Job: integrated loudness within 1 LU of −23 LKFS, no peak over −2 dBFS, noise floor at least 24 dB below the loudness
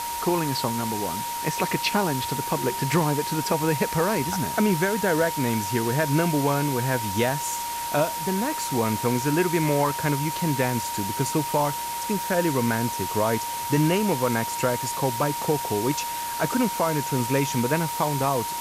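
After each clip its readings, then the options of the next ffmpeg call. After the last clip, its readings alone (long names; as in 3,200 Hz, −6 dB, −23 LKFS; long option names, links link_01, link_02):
interfering tone 940 Hz; level of the tone −29 dBFS; background noise floor −30 dBFS; target noise floor −49 dBFS; integrated loudness −24.5 LKFS; sample peak −10.0 dBFS; target loudness −23.0 LKFS
→ -af "bandreject=frequency=940:width=30"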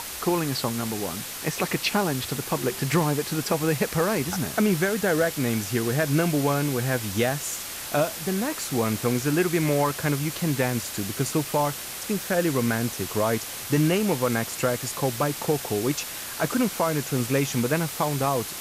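interfering tone none found; background noise floor −35 dBFS; target noise floor −49 dBFS
→ -af "afftdn=noise_reduction=14:noise_floor=-35"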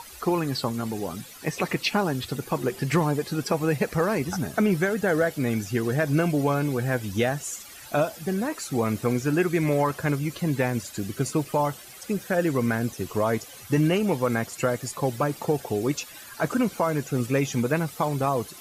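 background noise floor −44 dBFS; target noise floor −50 dBFS
→ -af "afftdn=noise_reduction=6:noise_floor=-44"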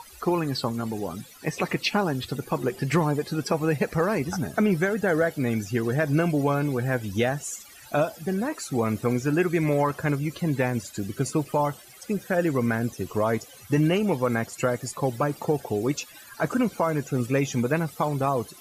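background noise floor −48 dBFS; target noise floor −50 dBFS
→ -af "afftdn=noise_reduction=6:noise_floor=-48"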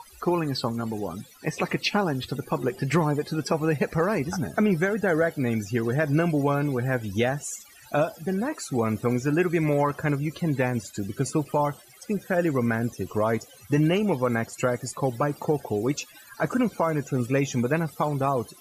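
background noise floor −51 dBFS; integrated loudness −26.0 LKFS; sample peak −11.5 dBFS; target loudness −23.0 LKFS
→ -af "volume=3dB"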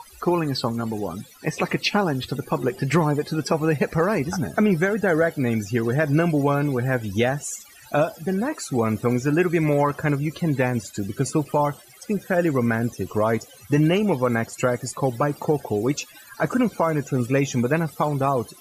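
integrated loudness −23.0 LKFS; sample peak −8.5 dBFS; background noise floor −48 dBFS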